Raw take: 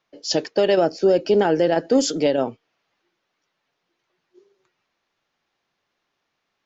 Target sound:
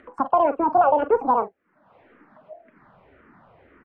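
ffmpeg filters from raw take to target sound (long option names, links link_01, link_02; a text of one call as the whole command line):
ffmpeg -i in.wav -filter_complex "[0:a]lowpass=frequency=1000:width=0.5412,lowpass=frequency=1000:width=1.3066,equalizer=frequency=63:width=0.37:gain=12.5,acompressor=mode=upward:threshold=-29dB:ratio=2.5,aecho=1:1:76:0.211,asetrate=76440,aresample=44100,asplit=2[link_01][link_02];[link_02]afreqshift=-1.9[link_03];[link_01][link_03]amix=inputs=2:normalize=1" out.wav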